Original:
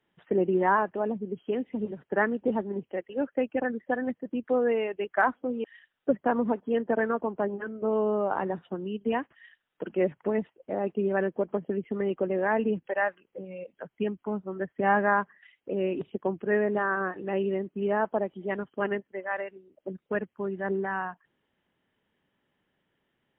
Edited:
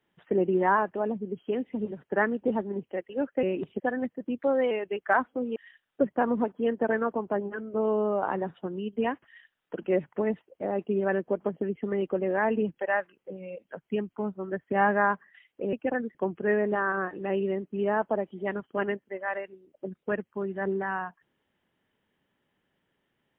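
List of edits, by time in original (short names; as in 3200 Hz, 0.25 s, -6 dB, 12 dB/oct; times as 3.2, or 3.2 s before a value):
3.43–3.85 swap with 15.81–16.18
4.41–4.79 speed 109%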